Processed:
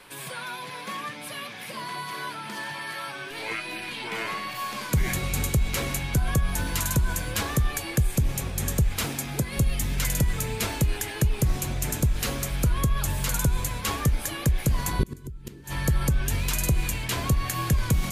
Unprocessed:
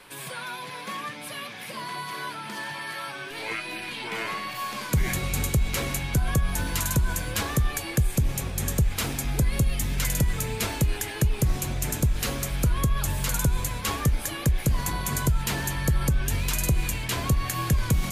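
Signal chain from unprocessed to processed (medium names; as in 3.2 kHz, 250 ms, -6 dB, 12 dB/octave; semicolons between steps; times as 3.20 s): 9.06–9.57 s: high-pass 120 Hz 12 dB/octave; 14.99–15.64 s: resonant low shelf 510 Hz +10.5 dB, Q 3; inverted gate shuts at -9 dBFS, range -27 dB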